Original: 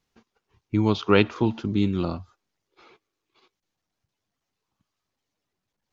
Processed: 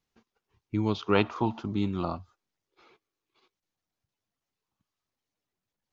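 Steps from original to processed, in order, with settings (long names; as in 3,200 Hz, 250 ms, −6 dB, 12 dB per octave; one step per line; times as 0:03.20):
0:01.15–0:02.16: flat-topped bell 900 Hz +8.5 dB 1.2 octaves
level −6 dB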